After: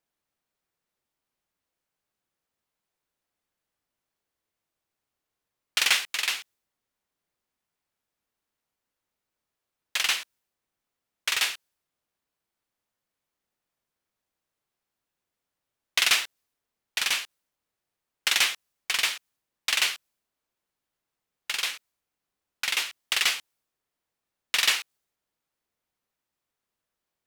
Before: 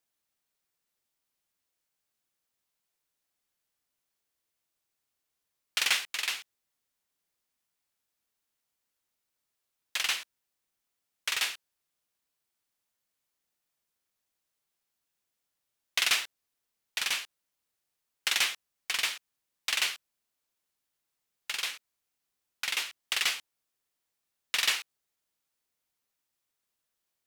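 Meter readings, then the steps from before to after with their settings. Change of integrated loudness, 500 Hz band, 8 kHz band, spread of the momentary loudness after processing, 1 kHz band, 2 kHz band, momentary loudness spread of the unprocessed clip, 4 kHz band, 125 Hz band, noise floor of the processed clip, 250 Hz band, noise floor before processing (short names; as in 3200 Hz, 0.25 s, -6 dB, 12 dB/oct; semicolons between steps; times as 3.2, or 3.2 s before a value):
+4.5 dB, +4.5 dB, +4.5 dB, 12 LU, +4.5 dB, +4.5 dB, 12 LU, +4.5 dB, n/a, under -85 dBFS, +4.5 dB, -84 dBFS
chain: mismatched tape noise reduction decoder only; gain +4.5 dB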